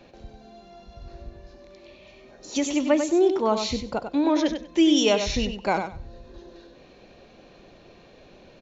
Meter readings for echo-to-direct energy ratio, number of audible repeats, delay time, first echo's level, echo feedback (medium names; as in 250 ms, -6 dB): -7.5 dB, 2, 96 ms, -7.5 dB, 18%